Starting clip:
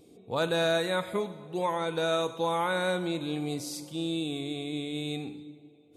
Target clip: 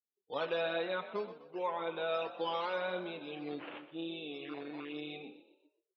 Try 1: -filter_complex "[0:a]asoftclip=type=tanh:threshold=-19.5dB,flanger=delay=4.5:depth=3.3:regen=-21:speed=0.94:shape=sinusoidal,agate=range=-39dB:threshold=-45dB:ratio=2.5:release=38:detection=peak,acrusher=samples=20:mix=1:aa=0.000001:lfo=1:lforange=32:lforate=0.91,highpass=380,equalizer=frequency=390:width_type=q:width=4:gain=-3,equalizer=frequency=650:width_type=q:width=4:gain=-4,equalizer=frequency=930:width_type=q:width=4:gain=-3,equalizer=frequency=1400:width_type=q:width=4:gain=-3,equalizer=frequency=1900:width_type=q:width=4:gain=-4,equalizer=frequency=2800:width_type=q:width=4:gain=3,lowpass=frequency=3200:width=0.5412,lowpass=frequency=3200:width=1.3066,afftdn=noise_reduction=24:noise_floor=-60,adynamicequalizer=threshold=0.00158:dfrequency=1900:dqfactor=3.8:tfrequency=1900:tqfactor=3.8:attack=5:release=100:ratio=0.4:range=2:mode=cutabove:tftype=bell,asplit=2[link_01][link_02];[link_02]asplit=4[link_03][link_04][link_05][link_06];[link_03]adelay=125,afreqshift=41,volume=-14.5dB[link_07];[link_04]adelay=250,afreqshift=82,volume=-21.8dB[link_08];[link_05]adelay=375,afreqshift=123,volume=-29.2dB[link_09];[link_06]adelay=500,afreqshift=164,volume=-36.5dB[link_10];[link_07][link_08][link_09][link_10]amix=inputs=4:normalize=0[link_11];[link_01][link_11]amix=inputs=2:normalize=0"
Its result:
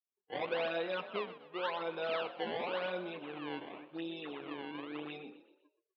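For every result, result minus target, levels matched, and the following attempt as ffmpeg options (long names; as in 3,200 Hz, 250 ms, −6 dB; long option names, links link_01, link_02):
soft clipping: distortion +13 dB; sample-and-hold swept by an LFO: distortion +10 dB
-filter_complex "[0:a]asoftclip=type=tanh:threshold=-12dB,flanger=delay=4.5:depth=3.3:regen=-21:speed=0.94:shape=sinusoidal,agate=range=-39dB:threshold=-45dB:ratio=2.5:release=38:detection=peak,acrusher=samples=20:mix=1:aa=0.000001:lfo=1:lforange=32:lforate=0.91,highpass=380,equalizer=frequency=390:width_type=q:width=4:gain=-3,equalizer=frequency=650:width_type=q:width=4:gain=-4,equalizer=frequency=930:width_type=q:width=4:gain=-3,equalizer=frequency=1400:width_type=q:width=4:gain=-3,equalizer=frequency=1900:width_type=q:width=4:gain=-4,equalizer=frequency=2800:width_type=q:width=4:gain=3,lowpass=frequency=3200:width=0.5412,lowpass=frequency=3200:width=1.3066,afftdn=noise_reduction=24:noise_floor=-60,adynamicequalizer=threshold=0.00158:dfrequency=1900:dqfactor=3.8:tfrequency=1900:tqfactor=3.8:attack=5:release=100:ratio=0.4:range=2:mode=cutabove:tftype=bell,asplit=2[link_01][link_02];[link_02]asplit=4[link_03][link_04][link_05][link_06];[link_03]adelay=125,afreqshift=41,volume=-14.5dB[link_07];[link_04]adelay=250,afreqshift=82,volume=-21.8dB[link_08];[link_05]adelay=375,afreqshift=123,volume=-29.2dB[link_09];[link_06]adelay=500,afreqshift=164,volume=-36.5dB[link_10];[link_07][link_08][link_09][link_10]amix=inputs=4:normalize=0[link_11];[link_01][link_11]amix=inputs=2:normalize=0"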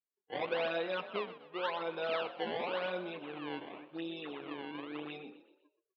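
sample-and-hold swept by an LFO: distortion +10 dB
-filter_complex "[0:a]asoftclip=type=tanh:threshold=-12dB,flanger=delay=4.5:depth=3.3:regen=-21:speed=0.94:shape=sinusoidal,agate=range=-39dB:threshold=-45dB:ratio=2.5:release=38:detection=peak,acrusher=samples=6:mix=1:aa=0.000001:lfo=1:lforange=9.6:lforate=0.91,highpass=380,equalizer=frequency=390:width_type=q:width=4:gain=-3,equalizer=frequency=650:width_type=q:width=4:gain=-4,equalizer=frequency=930:width_type=q:width=4:gain=-3,equalizer=frequency=1400:width_type=q:width=4:gain=-3,equalizer=frequency=1900:width_type=q:width=4:gain=-4,equalizer=frequency=2800:width_type=q:width=4:gain=3,lowpass=frequency=3200:width=0.5412,lowpass=frequency=3200:width=1.3066,afftdn=noise_reduction=24:noise_floor=-60,adynamicequalizer=threshold=0.00158:dfrequency=1900:dqfactor=3.8:tfrequency=1900:tqfactor=3.8:attack=5:release=100:ratio=0.4:range=2:mode=cutabove:tftype=bell,asplit=2[link_01][link_02];[link_02]asplit=4[link_03][link_04][link_05][link_06];[link_03]adelay=125,afreqshift=41,volume=-14.5dB[link_07];[link_04]adelay=250,afreqshift=82,volume=-21.8dB[link_08];[link_05]adelay=375,afreqshift=123,volume=-29.2dB[link_09];[link_06]adelay=500,afreqshift=164,volume=-36.5dB[link_10];[link_07][link_08][link_09][link_10]amix=inputs=4:normalize=0[link_11];[link_01][link_11]amix=inputs=2:normalize=0"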